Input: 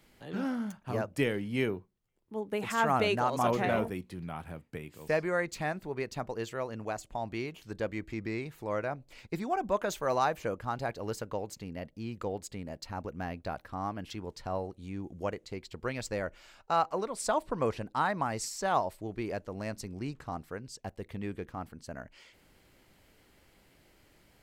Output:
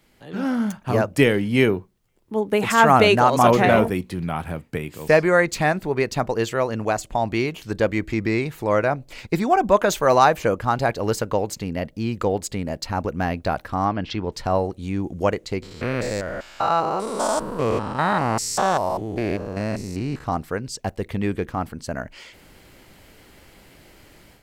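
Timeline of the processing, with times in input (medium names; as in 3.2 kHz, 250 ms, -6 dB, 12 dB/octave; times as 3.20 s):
13.85–14.32 s: low-pass 5 kHz 24 dB/octave
15.62–20.24 s: spectrogram pixelated in time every 200 ms
whole clip: level rider gain up to 11 dB; trim +2.5 dB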